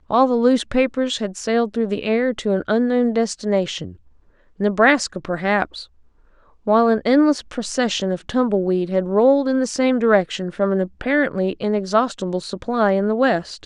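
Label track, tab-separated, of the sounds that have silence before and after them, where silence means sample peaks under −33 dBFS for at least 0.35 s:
4.600000	5.840000	sound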